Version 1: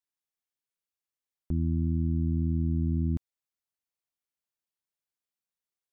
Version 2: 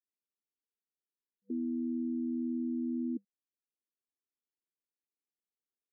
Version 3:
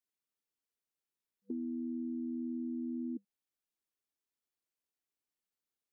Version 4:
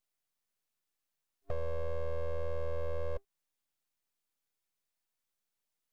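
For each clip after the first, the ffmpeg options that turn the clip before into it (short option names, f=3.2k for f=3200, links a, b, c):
-af "acrusher=bits=6:mode=log:mix=0:aa=0.000001,afftfilt=real='re*between(b*sr/4096,200,490)':imag='im*between(b*sr/4096,200,490)':win_size=4096:overlap=0.75"
-af "acompressor=threshold=-38dB:ratio=4,volume=1.5dB"
-af "aeval=exprs='abs(val(0))':c=same,volume=6dB"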